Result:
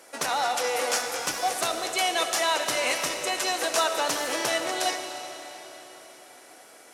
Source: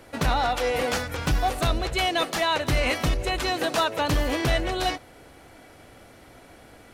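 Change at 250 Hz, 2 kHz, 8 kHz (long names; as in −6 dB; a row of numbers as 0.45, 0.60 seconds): −8.5, −0.5, +8.5 decibels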